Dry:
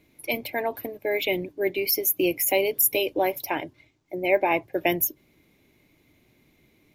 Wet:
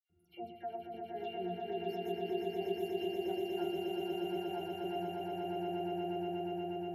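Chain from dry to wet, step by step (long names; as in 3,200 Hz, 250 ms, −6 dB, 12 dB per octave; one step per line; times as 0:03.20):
in parallel at +2.5 dB: brickwall limiter −16.5 dBFS, peak gain reduction 9 dB
on the sum: parametric band 3,000 Hz −3 dB 2.3 octaves
resonances in every octave F, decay 0.23 s
all-pass dispersion lows, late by 97 ms, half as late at 2,200 Hz
downward compressor, threshold −32 dBFS, peak gain reduction 12.5 dB
high-shelf EQ 5,000 Hz +8.5 dB
mains-hum notches 50/100 Hz
echo that builds up and dies away 120 ms, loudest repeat 8, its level −4 dB
on a send at −19 dB: convolution reverb RT60 2.6 s, pre-delay 5 ms
on the sum: level −6.5 dB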